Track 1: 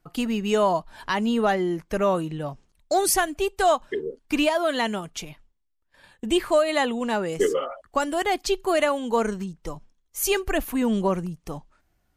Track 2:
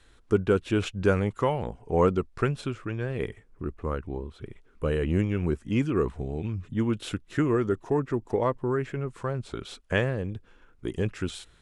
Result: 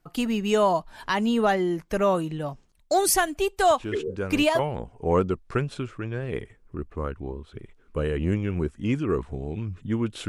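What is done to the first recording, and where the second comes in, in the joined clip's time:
track 1
3.7 add track 2 from 0.57 s 0.89 s -8 dB
4.59 switch to track 2 from 1.46 s

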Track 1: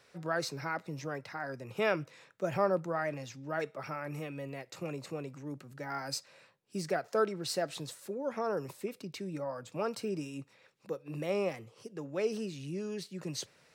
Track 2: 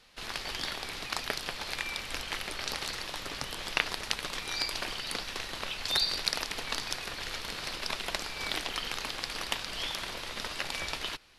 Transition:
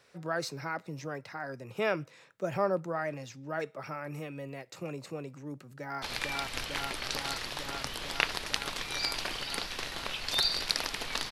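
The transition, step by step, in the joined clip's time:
track 1
5.63–6.02 echo throw 0.45 s, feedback 85%, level -0.5 dB
6.02 switch to track 2 from 1.59 s

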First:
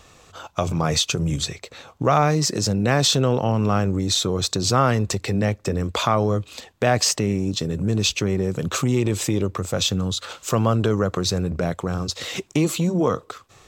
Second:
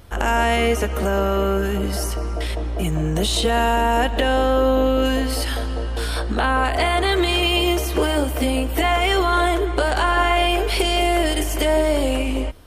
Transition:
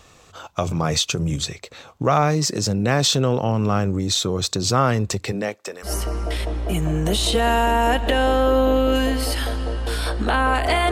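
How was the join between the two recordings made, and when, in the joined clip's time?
first
5.31–5.92 HPF 200 Hz -> 1200 Hz
5.87 switch to second from 1.97 s, crossfade 0.10 s

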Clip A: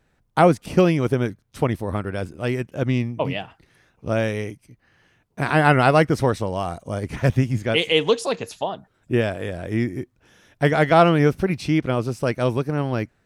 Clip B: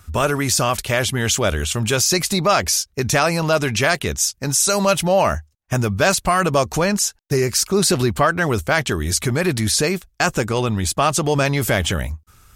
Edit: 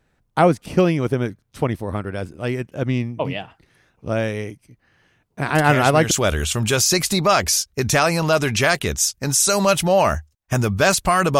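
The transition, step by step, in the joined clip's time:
clip A
5.55 add clip B from 0.75 s 0.56 s -6 dB
6.11 switch to clip B from 1.31 s

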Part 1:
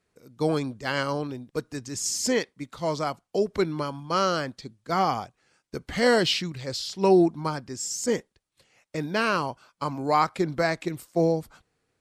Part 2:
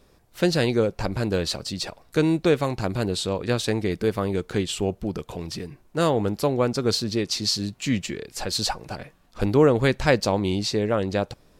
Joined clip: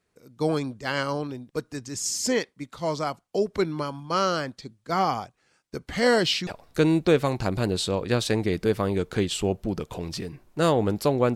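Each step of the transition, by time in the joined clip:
part 1
6.47 switch to part 2 from 1.85 s

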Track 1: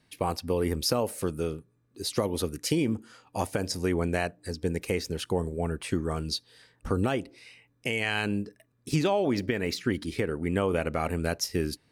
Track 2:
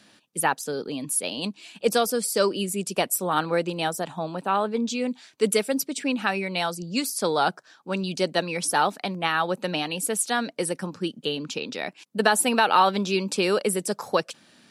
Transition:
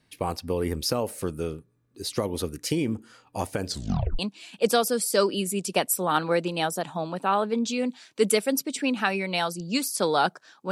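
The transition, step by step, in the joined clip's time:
track 1
3.66 tape stop 0.53 s
4.19 switch to track 2 from 1.41 s

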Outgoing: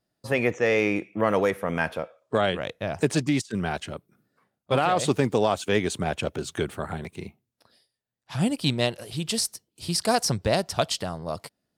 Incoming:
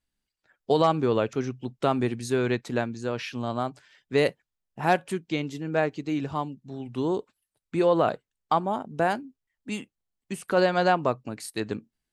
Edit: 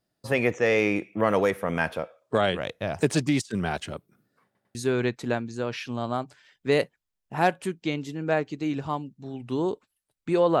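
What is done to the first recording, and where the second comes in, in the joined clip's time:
outgoing
4.45 stutter in place 0.10 s, 3 plays
4.75 switch to incoming from 2.21 s

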